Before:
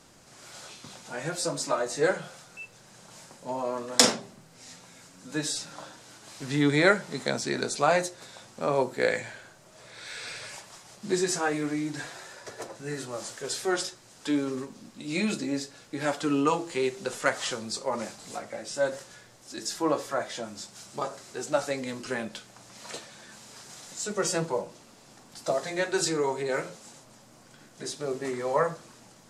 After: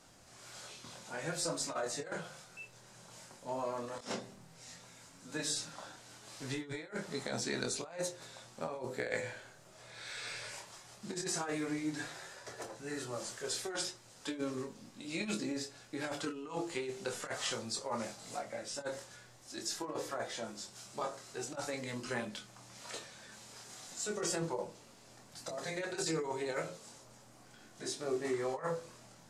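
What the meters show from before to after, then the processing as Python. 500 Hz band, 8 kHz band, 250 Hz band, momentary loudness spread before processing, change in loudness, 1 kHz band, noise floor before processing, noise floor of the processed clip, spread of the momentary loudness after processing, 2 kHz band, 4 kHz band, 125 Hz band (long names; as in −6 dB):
−10.5 dB, −7.5 dB, −10.0 dB, 20 LU, −10.5 dB, −11.0 dB, −54 dBFS, −59 dBFS, 16 LU, −10.5 dB, −8.5 dB, −9.0 dB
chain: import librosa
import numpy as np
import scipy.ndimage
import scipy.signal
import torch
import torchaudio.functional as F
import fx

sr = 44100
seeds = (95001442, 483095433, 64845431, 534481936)

y = fx.hum_notches(x, sr, base_hz=50, count=10)
y = fx.over_compress(y, sr, threshold_db=-29.0, ratio=-0.5)
y = fx.chorus_voices(y, sr, voices=4, hz=0.13, base_ms=25, depth_ms=1.4, mix_pct=35)
y = y * 10.0 ** (-4.5 / 20.0)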